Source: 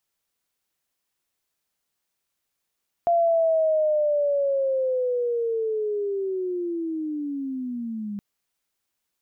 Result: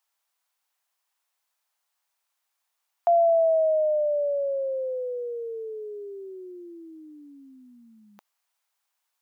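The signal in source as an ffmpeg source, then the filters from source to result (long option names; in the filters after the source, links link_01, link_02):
-f lavfi -i "aevalsrc='pow(10,(-16.5-12*t/5.12)/20)*sin(2*PI*(690*t-490*t*t/(2*5.12)))':duration=5.12:sample_rate=44100"
-af "highpass=frequency=840:width_type=q:width=1.8"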